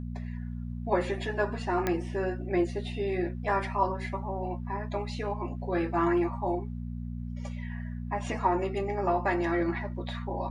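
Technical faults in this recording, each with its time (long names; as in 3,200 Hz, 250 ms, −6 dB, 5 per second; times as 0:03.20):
mains hum 60 Hz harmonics 4 −36 dBFS
0:01.87: click −14 dBFS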